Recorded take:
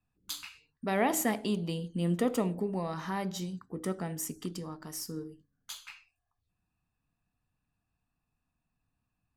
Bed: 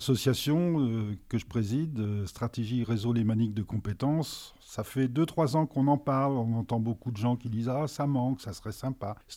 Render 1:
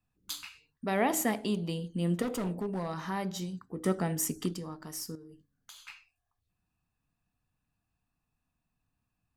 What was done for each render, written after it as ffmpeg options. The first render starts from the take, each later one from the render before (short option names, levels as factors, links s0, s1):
-filter_complex "[0:a]asettb=1/sr,asplit=3[s0][s1][s2];[s0]atrim=end=2.224[s3];[s1]atrim=start=2.22:end=2.96,asetpts=PTS-STARTPTS,afade=t=in:d=0.004:c=qsin,afade=t=out:st=0.736:d=0.004:c=qsin,asoftclip=type=hard:threshold=0.0355[s4];[s2]atrim=start=2.956[s5];[s3][s4]acrossfade=d=0.004:c1=hsin:c2=qsin[s6];[s6][s5]acrossfade=d=0.004:c1=qsin:c2=hsin,asettb=1/sr,asplit=3[s7][s8][s9];[s7]atrim=end=3.854[s10];[s8]atrim=start=3.85:end=4.54,asetpts=PTS-STARTPTS,afade=t=in:d=0.004:c=qsin,afade=t=out:st=0.686:d=0.004:c=qsin,acontrast=28[s11];[s9]atrim=start=4.536[s12];[s10][s11]acrossfade=d=0.004:c1=hsin:c2=qsin[s13];[s13][s12]acrossfade=d=0.004:c1=qsin:c2=hsin,asettb=1/sr,asplit=3[s14][s15][s16];[s14]atrim=end=5.154[s17];[s15]atrim=start=5.15:end=5.88,asetpts=PTS-STARTPTS,afade=t=in:d=0.004:c=qsin,afade=t=out:st=0.726:d=0.004:c=qsin,acompressor=threshold=0.00501:ratio=8:attack=3.2:release=140:knee=1:detection=peak[s18];[s16]atrim=start=5.876[s19];[s17][s18]acrossfade=d=0.004:c1=hsin:c2=qsin[s20];[s20][s19]acrossfade=d=0.004:c1=qsin:c2=hsin"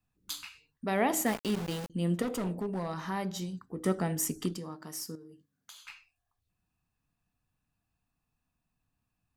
-filter_complex "[0:a]asettb=1/sr,asplit=3[s0][s1][s2];[s0]atrim=end=1.264[s3];[s1]atrim=start=1.26:end=1.9,asetpts=PTS-STARTPTS,afade=t=in:d=0.004:c=qsin,afade=t=out:st=0.636:d=0.004:c=qsin,aeval=exprs='val(0)*gte(abs(val(0)),0.0178)':c=same[s4];[s2]atrim=start=1.896[s5];[s3][s4]acrossfade=d=0.004:c1=hsin:c2=qsin[s6];[s6][s5]acrossfade=d=0.004:c1=qsin:c2=hsin,asettb=1/sr,asplit=3[s7][s8][s9];[s7]atrim=end=4.574[s10];[s8]atrim=start=4.57:end=5.85,asetpts=PTS-STARTPTS,afade=t=in:d=0.004:c=qsin,afade=t=out:st=1.276:d=0.004:c=qsin,highpass=130[s11];[s9]atrim=start=5.846[s12];[s10][s11]acrossfade=d=0.004:c1=hsin:c2=qsin[s13];[s13][s12]acrossfade=d=0.004:c1=qsin:c2=hsin"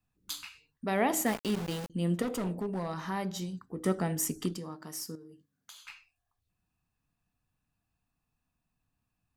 -af anull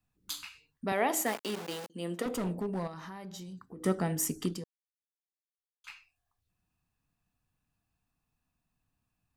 -filter_complex "[0:a]asettb=1/sr,asplit=3[s0][s1][s2];[s0]atrim=end=0.924[s3];[s1]atrim=start=0.92:end=2.26,asetpts=PTS-STARTPTS,afade=t=in:d=0.004:c=qsin,afade=t=out:st=1.336:d=0.004:c=qsin,highpass=330[s4];[s2]atrim=start=2.256[s5];[s3][s4]acrossfade=d=0.004:c1=hsin:c2=qsin[s6];[s6][s5]acrossfade=d=0.004:c1=qsin:c2=hsin,asettb=1/sr,asplit=3[s7][s8][s9];[s7]atrim=end=2.874[s10];[s8]atrim=start=2.87:end=3.82,asetpts=PTS-STARTPTS,afade=t=in:d=0.004:c=qsin,afade=t=out:st=0.946:d=0.004:c=qsin,acompressor=threshold=0.00891:ratio=6:attack=3.2:release=140:knee=1:detection=peak[s11];[s9]atrim=start=3.816[s12];[s10][s11]acrossfade=d=0.004:c1=hsin:c2=qsin[s13];[s13][s12]acrossfade=d=0.004:c1=qsin:c2=hsin,asplit=3[s14][s15][s16];[s14]atrim=end=4.64,asetpts=PTS-STARTPTS,afade=t=out:st=4.636:d=0.004:c=hsin[s17];[s15]atrim=start=4.64:end=5.84,asetpts=PTS-STARTPTS,volume=0[s18];[s16]atrim=start=5.84,asetpts=PTS-STARTPTS,afade=t=in:d=0.004:c=hsin[s19];[s17][s18][s19]concat=n=3:v=0:a=1"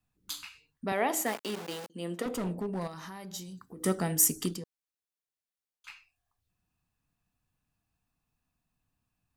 -filter_complex "[0:a]asettb=1/sr,asplit=3[s0][s1][s2];[s0]atrim=end=2.814[s3];[s1]atrim=start=2.81:end=4.56,asetpts=PTS-STARTPTS,afade=t=in:d=0.004:c=qsin,afade=t=out:st=1.746:d=0.004:c=qsin,equalizer=f=16000:t=o:w=1.8:g=11[s4];[s2]atrim=start=4.556[s5];[s3][s4]acrossfade=d=0.004:c1=hsin:c2=qsin[s6];[s6][s5]acrossfade=d=0.004:c1=qsin:c2=hsin"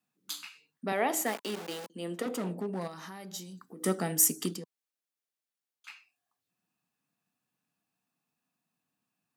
-af "highpass=f=170:w=0.5412,highpass=f=170:w=1.3066,bandreject=f=1000:w=21"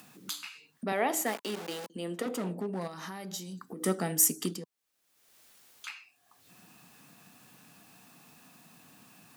-af "acompressor=mode=upward:threshold=0.02:ratio=2.5"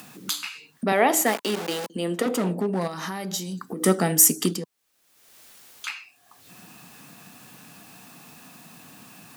-af "volume=2.99,alimiter=limit=0.708:level=0:latency=1"